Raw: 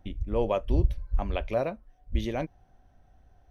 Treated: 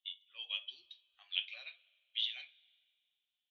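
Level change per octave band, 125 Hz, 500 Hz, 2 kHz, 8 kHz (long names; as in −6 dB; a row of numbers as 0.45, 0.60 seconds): below −40 dB, below −40 dB, −3.0 dB, can't be measured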